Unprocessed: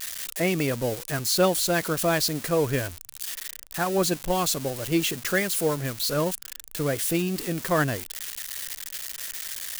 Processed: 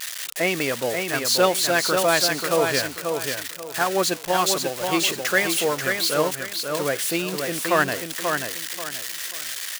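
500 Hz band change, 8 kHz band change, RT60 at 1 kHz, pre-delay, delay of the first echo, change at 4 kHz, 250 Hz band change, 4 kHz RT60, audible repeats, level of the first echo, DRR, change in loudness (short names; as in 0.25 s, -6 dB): +3.5 dB, +4.0 dB, none, none, 0.536 s, +6.0 dB, -0.5 dB, none, 3, -5.0 dB, none, +3.5 dB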